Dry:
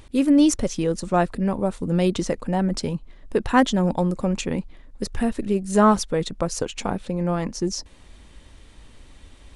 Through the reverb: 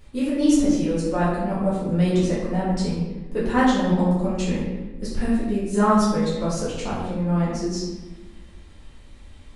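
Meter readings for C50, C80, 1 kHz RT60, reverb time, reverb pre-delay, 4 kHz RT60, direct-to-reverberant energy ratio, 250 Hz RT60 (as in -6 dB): 0.5 dB, 3.0 dB, 1.0 s, 1.1 s, 4 ms, 0.75 s, -9.5 dB, 1.7 s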